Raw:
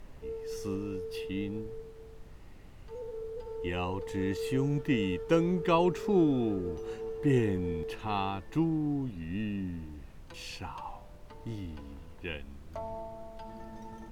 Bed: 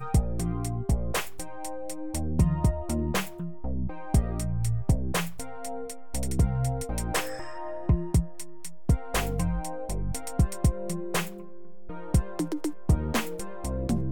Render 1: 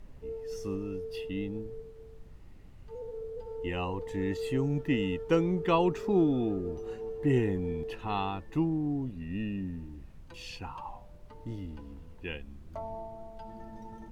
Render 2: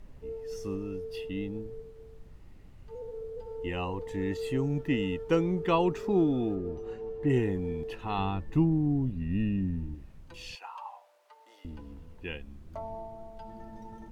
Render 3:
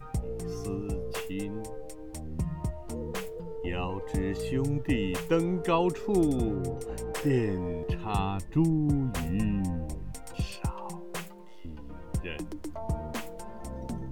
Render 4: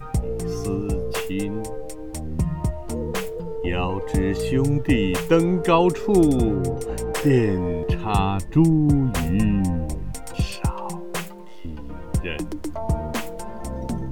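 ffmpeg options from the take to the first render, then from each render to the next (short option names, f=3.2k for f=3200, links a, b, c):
-af "afftdn=nr=6:nf=-49"
-filter_complex "[0:a]asettb=1/sr,asplit=3[a][b][c];[a]atrim=end=6.554[d];[b]atrim=start=6.55:end=7.3,asetpts=PTS-STARTPTS,afade=t=in:d=0.004:c=qsin,afade=t=out:st=0.746:d=0.004:c=qsin,lowpass=f=3.6k:p=1[e];[c]atrim=start=7.296[f];[d][e]acrossfade=d=0.004:c1=hsin:c2=qsin[g];[g][f]acrossfade=d=0.004:c1=qsin:c2=hsin,asettb=1/sr,asplit=3[h][i][j];[h]atrim=end=8.184[k];[i]atrim=start=8.18:end=9.95,asetpts=PTS-STARTPTS,afade=t=in:d=0.004:c=qsin,afade=t=out:st=1.766:d=0.004:c=qsin,bass=f=250:g=8,treble=f=4k:g=-2[l];[j]atrim=start=9.946[m];[k][l]acrossfade=d=0.004:c1=hsin:c2=qsin[n];[n][m]acrossfade=d=0.004:c1=qsin:c2=hsin,asettb=1/sr,asplit=3[o][p][q];[o]atrim=end=10.554[r];[p]atrim=start=10.55:end=11.65,asetpts=PTS-STARTPTS,afade=t=in:d=0.004:c=qsin,afade=t=out:st=1.096:d=0.004:c=qsin,highpass=f=630:w=0.5412,highpass=f=630:w=1.3066[s];[q]atrim=start=11.646[t];[r][s]acrossfade=d=0.004:c1=hsin:c2=qsin[u];[u][t]acrossfade=d=0.004:c1=qsin:c2=hsin"
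-filter_complex "[1:a]volume=-9dB[a];[0:a][a]amix=inputs=2:normalize=0"
-af "volume=8.5dB"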